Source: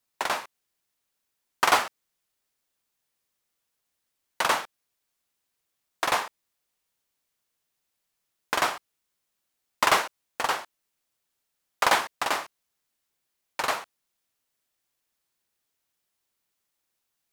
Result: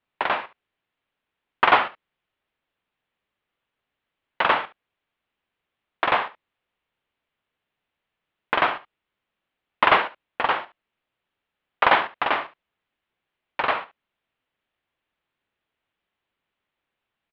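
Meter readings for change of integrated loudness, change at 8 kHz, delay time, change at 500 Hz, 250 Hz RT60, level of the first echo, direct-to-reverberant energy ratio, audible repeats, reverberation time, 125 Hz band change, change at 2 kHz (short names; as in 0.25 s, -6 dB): +4.0 dB, under -30 dB, 71 ms, +4.5 dB, none, -16.0 dB, none, 1, none, +4.5 dB, +4.5 dB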